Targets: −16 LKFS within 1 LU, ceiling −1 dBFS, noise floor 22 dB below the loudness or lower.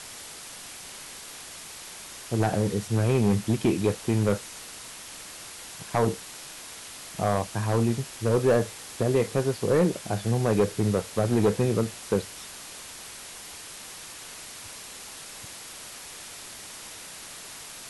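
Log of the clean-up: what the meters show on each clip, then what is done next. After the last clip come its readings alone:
share of clipped samples 0.9%; peaks flattened at −15.5 dBFS; background noise floor −43 dBFS; target noise floor −48 dBFS; integrated loudness −26.0 LKFS; sample peak −15.5 dBFS; target loudness −16.0 LKFS
→ clipped peaks rebuilt −15.5 dBFS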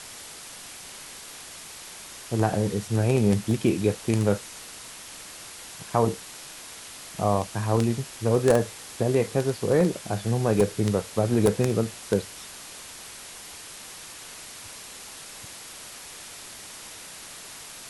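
share of clipped samples 0.0%; background noise floor −43 dBFS; target noise floor −47 dBFS
→ noise reduction from a noise print 6 dB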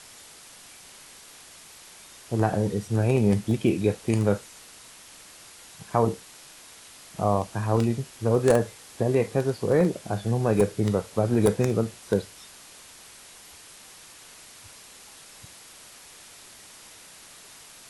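background noise floor −49 dBFS; integrated loudness −25.0 LKFS; sample peak −6.5 dBFS; target loudness −16.0 LKFS
→ level +9 dB
brickwall limiter −1 dBFS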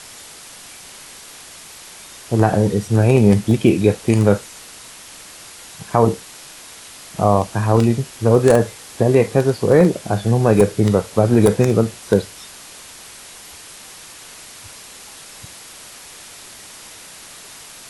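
integrated loudness −16.5 LKFS; sample peak −1.0 dBFS; background noise floor −40 dBFS

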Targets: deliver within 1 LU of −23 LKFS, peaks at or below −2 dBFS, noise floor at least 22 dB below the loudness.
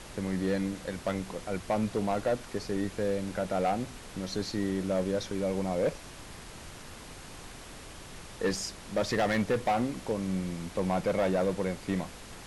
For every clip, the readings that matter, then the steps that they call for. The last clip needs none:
share of clipped samples 1.6%; peaks flattened at −22.0 dBFS; background noise floor −47 dBFS; target noise floor −54 dBFS; integrated loudness −31.5 LKFS; sample peak −22.0 dBFS; target loudness −23.0 LKFS
→ clipped peaks rebuilt −22 dBFS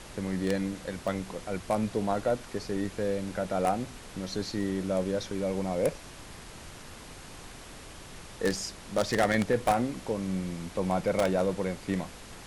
share of clipped samples 0.0%; background noise floor −47 dBFS; target noise floor −53 dBFS
→ noise reduction from a noise print 6 dB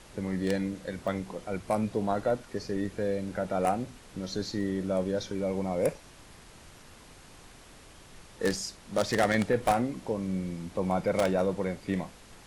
background noise floor −53 dBFS; integrated loudness −30.5 LKFS; sample peak −13.0 dBFS; target loudness −23.0 LKFS
→ level +7.5 dB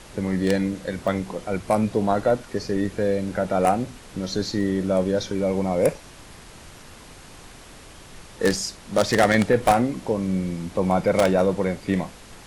integrated loudness −23.0 LKFS; sample peak −5.5 dBFS; background noise floor −45 dBFS

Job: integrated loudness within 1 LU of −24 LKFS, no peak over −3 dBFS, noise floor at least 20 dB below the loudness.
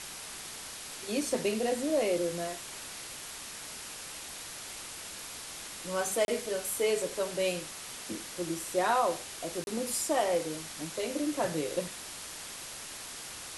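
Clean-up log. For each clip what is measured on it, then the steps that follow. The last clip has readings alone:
number of dropouts 2; longest dropout 31 ms; background noise floor −44 dBFS; target noise floor −54 dBFS; integrated loudness −33.5 LKFS; sample peak −16.0 dBFS; target loudness −24.0 LKFS
→ repair the gap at 0:06.25/0:09.64, 31 ms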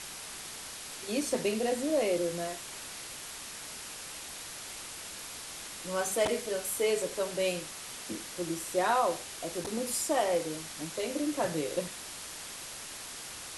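number of dropouts 0; background noise floor −44 dBFS; target noise floor −54 dBFS
→ broadband denoise 10 dB, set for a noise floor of −44 dBFS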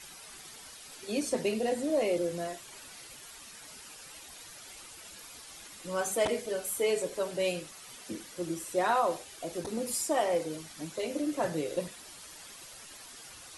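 background noise floor −49 dBFS; target noise floor −52 dBFS
→ broadband denoise 6 dB, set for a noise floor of −49 dBFS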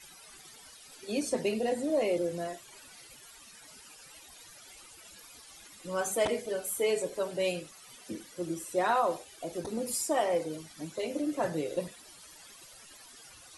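background noise floor −53 dBFS; integrated loudness −32.5 LKFS; sample peak −16.5 dBFS; target loudness −24.0 LKFS
→ level +8.5 dB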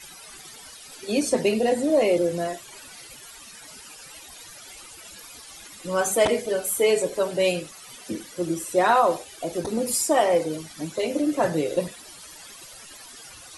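integrated loudness −24.0 LKFS; sample peak −8.0 dBFS; background noise floor −45 dBFS

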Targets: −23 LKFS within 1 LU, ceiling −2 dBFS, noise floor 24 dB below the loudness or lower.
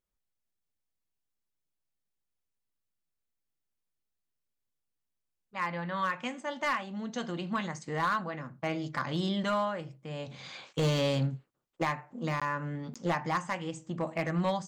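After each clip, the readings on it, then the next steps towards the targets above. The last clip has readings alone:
share of clipped samples 0.5%; peaks flattened at −22.5 dBFS; number of dropouts 2; longest dropout 16 ms; integrated loudness −33.0 LKFS; sample peak −22.5 dBFS; target loudness −23.0 LKFS
→ clipped peaks rebuilt −22.5 dBFS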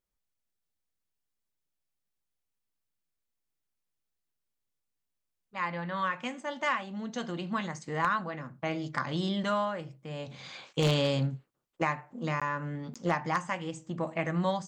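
share of clipped samples 0.0%; number of dropouts 2; longest dropout 16 ms
→ repair the gap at 0:12.40/0:12.94, 16 ms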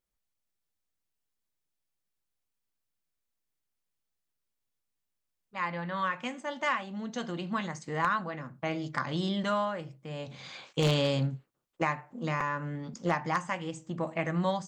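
number of dropouts 0; integrated loudness −32.5 LKFS; sample peak −13.5 dBFS; target loudness −23.0 LKFS
→ level +9.5 dB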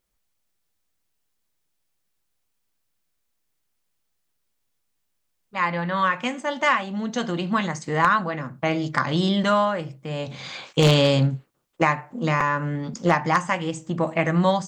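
integrated loudness −23.0 LKFS; sample peak −4.0 dBFS; background noise floor −74 dBFS

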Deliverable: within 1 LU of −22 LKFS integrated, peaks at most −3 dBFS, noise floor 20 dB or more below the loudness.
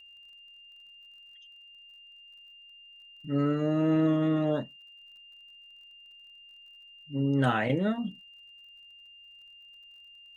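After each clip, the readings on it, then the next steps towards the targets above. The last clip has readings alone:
crackle rate 27 per second; interfering tone 2,800 Hz; level of the tone −50 dBFS; integrated loudness −28.0 LKFS; sample peak −14.0 dBFS; target loudness −22.0 LKFS
→ click removal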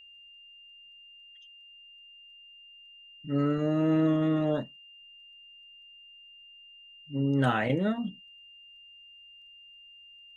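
crackle rate 0 per second; interfering tone 2,800 Hz; level of the tone −50 dBFS
→ notch filter 2,800 Hz, Q 30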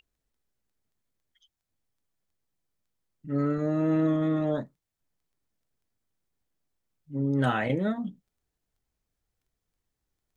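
interfering tone none found; integrated loudness −27.5 LKFS; sample peak −14.0 dBFS; target loudness −22.0 LKFS
→ level +5.5 dB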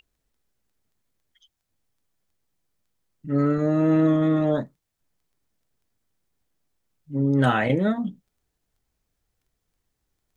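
integrated loudness −22.0 LKFS; sample peak −8.5 dBFS; background noise floor −79 dBFS

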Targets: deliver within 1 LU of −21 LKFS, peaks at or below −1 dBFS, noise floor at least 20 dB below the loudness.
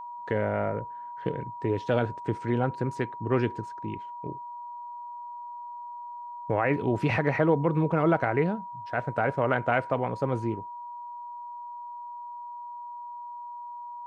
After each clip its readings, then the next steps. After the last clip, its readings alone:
interfering tone 960 Hz; level of the tone −37 dBFS; integrated loudness −28.5 LKFS; sample peak −10.0 dBFS; target loudness −21.0 LKFS
→ notch filter 960 Hz, Q 30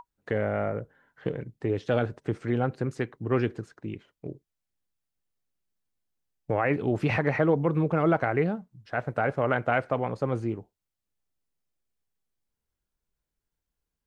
interfering tone none found; integrated loudness −28.0 LKFS; sample peak −10.5 dBFS; target loudness −21.0 LKFS
→ level +7 dB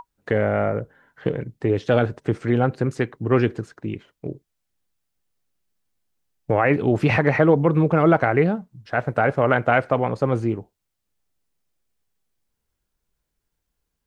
integrated loudness −21.0 LKFS; sample peak −3.5 dBFS; background noise floor −79 dBFS

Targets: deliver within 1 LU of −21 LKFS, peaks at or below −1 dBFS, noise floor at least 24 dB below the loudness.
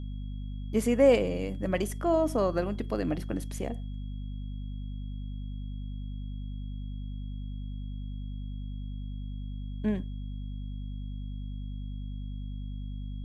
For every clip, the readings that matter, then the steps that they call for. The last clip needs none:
mains hum 50 Hz; hum harmonics up to 250 Hz; level of the hum −34 dBFS; interfering tone 3,300 Hz; level of the tone −61 dBFS; integrated loudness −33.0 LKFS; sample peak −10.5 dBFS; target loudness −21.0 LKFS
→ hum removal 50 Hz, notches 5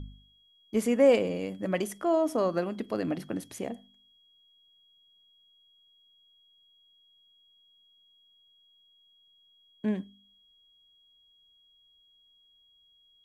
mains hum none found; interfering tone 3,300 Hz; level of the tone −61 dBFS
→ notch filter 3,300 Hz, Q 30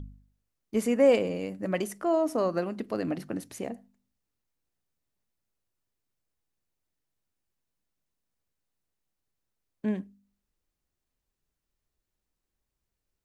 interfering tone none found; integrated loudness −29.0 LKFS; sample peak −10.5 dBFS; target loudness −21.0 LKFS
→ level +8 dB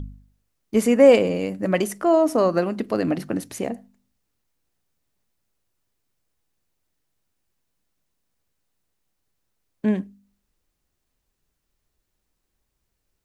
integrated loudness −21.0 LKFS; sample peak −2.5 dBFS; background noise floor −77 dBFS

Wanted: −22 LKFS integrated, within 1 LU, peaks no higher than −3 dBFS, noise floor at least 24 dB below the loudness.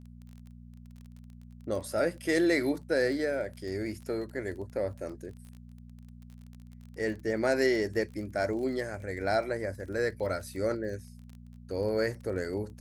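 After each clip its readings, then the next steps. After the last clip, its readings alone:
crackle rate 29 per second; mains hum 60 Hz; hum harmonics up to 240 Hz; level of the hum −47 dBFS; integrated loudness −31.5 LKFS; sample peak −15.0 dBFS; target loudness −22.0 LKFS
→ click removal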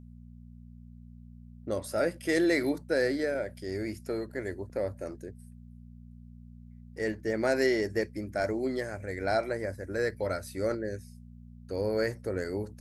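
crackle rate 0 per second; mains hum 60 Hz; hum harmonics up to 240 Hz; level of the hum −47 dBFS
→ hum removal 60 Hz, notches 4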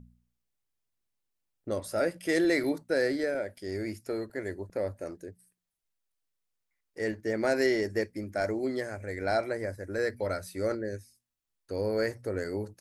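mains hum none found; integrated loudness −31.5 LKFS; sample peak −15.0 dBFS; target loudness −22.0 LKFS
→ level +9.5 dB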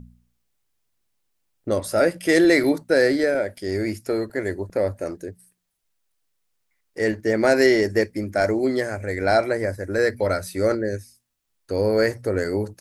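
integrated loudness −22.0 LKFS; sample peak −5.5 dBFS; background noise floor −73 dBFS

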